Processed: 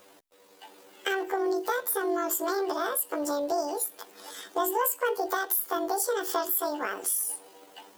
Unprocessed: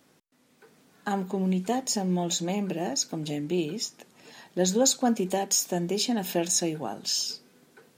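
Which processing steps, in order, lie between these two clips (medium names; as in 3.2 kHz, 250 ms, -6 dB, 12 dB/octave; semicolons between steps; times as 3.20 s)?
rotating-head pitch shifter +11.5 st; compression 2.5:1, threshold -36 dBFS, peak gain reduction 11.5 dB; trim +7.5 dB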